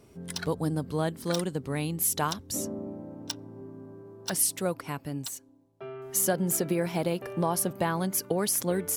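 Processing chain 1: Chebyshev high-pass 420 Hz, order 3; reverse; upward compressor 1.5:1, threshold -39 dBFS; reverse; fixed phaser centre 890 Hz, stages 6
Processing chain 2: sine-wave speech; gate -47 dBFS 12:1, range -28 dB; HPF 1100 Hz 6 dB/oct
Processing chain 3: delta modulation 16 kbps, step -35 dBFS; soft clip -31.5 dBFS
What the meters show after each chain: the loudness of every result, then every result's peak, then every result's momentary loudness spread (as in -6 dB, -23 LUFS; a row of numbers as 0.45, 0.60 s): -32.0, -37.0, -38.0 LUFS; -13.5, -17.5, -31.5 dBFS; 18, 15, 6 LU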